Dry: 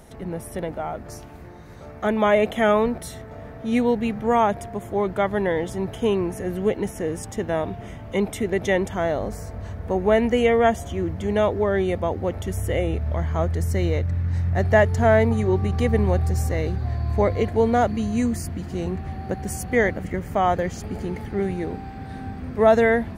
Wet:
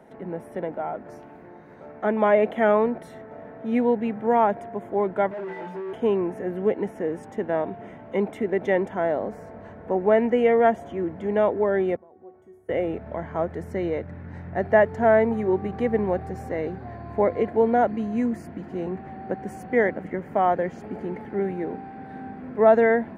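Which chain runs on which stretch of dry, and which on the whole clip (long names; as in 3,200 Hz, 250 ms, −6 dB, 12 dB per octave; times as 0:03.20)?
0:05.31–0:05.93: stiff-string resonator 180 Hz, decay 0.49 s, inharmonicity 0.03 + compressor whose output falls as the input rises −34 dBFS, ratio −0.5 + mid-hump overdrive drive 39 dB, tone 1,200 Hz, clips at −25 dBFS
0:11.96–0:12.69: parametric band 3,200 Hz −13.5 dB 1 octave + downward compressor 12 to 1, threshold −28 dBFS + tuned comb filter 370 Hz, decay 0.43 s, mix 90%
whole clip: three-way crossover with the lows and the highs turned down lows −23 dB, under 170 Hz, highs −20 dB, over 2,200 Hz; notch filter 1,200 Hz, Q 9.2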